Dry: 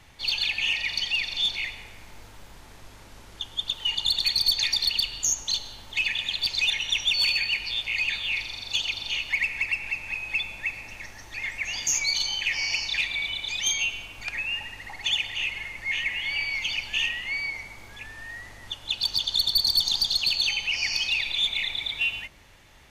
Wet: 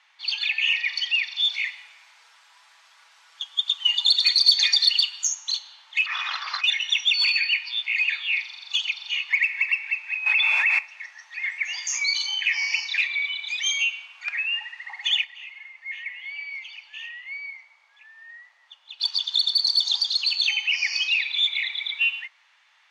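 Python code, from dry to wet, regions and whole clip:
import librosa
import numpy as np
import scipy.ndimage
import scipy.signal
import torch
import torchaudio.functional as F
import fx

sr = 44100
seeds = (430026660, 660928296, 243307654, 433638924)

y = fx.chain(x, sr, fx.bass_treble(bass_db=3, treble_db=5),
    fx.comb(ms=6.1, depth=0.46), at=(1.51, 5.28))
y = fx.chain(y, sr, fx.cvsd(bps=32000),
    fx.peak_eq(hz=1200.0, db=11.0, octaves=0.66),
    fx.over_compress(threshold_db=-29.0, ratio=-0.5), at=(6.06, 6.64))
y = fx.chain(y, sr, fx.peak_eq(hz=7500.0, db=-3.5, octaves=0.98),
    fx.env_flatten(amount_pct=100), at=(10.26, 10.79))
y = fx.chain(y, sr, fx.ladder_highpass(hz=420.0, resonance_pct=50),
    fx.notch(hz=1500.0, q=21.0), at=(15.24, 19.0))
y = scipy.signal.sosfilt(scipy.signal.cheby2(4, 80, 160.0, 'highpass', fs=sr, output='sos'), y)
y = fx.noise_reduce_blind(y, sr, reduce_db=7)
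y = scipy.signal.sosfilt(scipy.signal.butter(2, 4500.0, 'lowpass', fs=sr, output='sos'), y)
y = F.gain(torch.from_numpy(y), 4.5).numpy()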